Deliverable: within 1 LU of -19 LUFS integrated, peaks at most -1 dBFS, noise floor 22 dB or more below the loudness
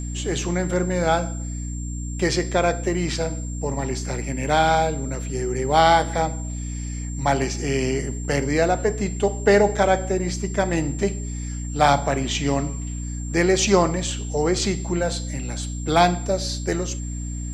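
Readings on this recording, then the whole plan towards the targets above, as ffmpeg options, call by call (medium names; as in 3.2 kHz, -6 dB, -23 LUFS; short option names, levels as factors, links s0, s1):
hum 60 Hz; highest harmonic 300 Hz; hum level -27 dBFS; steady tone 7.4 kHz; tone level -38 dBFS; loudness -22.5 LUFS; peak level -2.5 dBFS; loudness target -19.0 LUFS
-> -af "bandreject=f=60:t=h:w=4,bandreject=f=120:t=h:w=4,bandreject=f=180:t=h:w=4,bandreject=f=240:t=h:w=4,bandreject=f=300:t=h:w=4"
-af "bandreject=f=7400:w=30"
-af "volume=1.5,alimiter=limit=0.891:level=0:latency=1"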